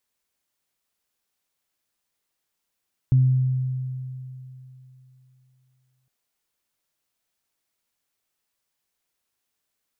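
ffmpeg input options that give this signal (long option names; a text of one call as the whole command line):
ffmpeg -f lavfi -i "aevalsrc='0.237*pow(10,-3*t/3.12)*sin(2*PI*129*t)+0.0237*pow(10,-3*t/0.78)*sin(2*PI*258*t)':duration=2.96:sample_rate=44100" out.wav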